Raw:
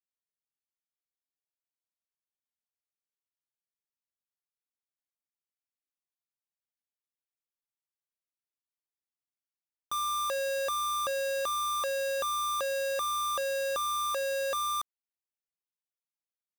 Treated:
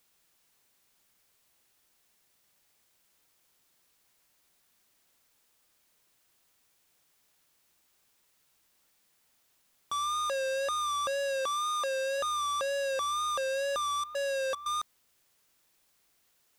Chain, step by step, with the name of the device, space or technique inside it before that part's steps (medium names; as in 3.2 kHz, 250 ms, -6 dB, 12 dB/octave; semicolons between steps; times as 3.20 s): 11.37–12.16 s: high-pass 130 Hz -> 310 Hz 12 dB/octave; worn cassette (low-pass 8.9 kHz 12 dB/octave; wow and flutter; level dips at 14.04/14.55 s, 108 ms -12 dB; white noise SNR 34 dB)